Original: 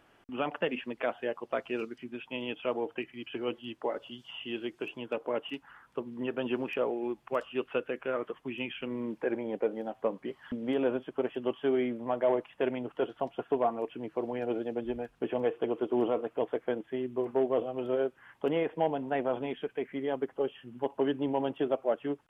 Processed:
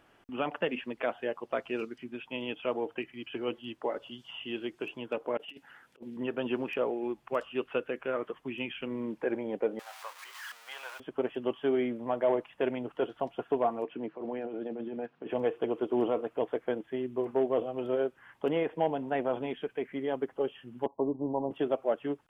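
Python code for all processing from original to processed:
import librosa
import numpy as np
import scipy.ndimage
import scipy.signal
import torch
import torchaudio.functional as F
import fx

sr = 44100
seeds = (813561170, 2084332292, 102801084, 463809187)

y = fx.chain(x, sr, fx.highpass(hz=270.0, slope=6),
    fx.peak_eq(hz=1100.0, db=-13.0, octaves=0.66),
    fx.over_compress(threshold_db=-45.0, ratio=-0.5), at=(5.37, 6.17))
y = fx.chain(y, sr, fx.zero_step(step_db=-39.0),
    fx.highpass(hz=990.0, slope=24), at=(9.79, 11.0))
y = fx.chain(y, sr, fx.highpass(hz=150.0, slope=24),
    fx.over_compress(threshold_db=-36.0, ratio=-1.0),
    fx.air_absorb(metres=220.0), at=(13.84, 15.3))
y = fx.chain(y, sr, fx.law_mismatch(coded='A'),
    fx.cheby1_lowpass(hz=1100.0, order=8), at=(20.86, 21.51))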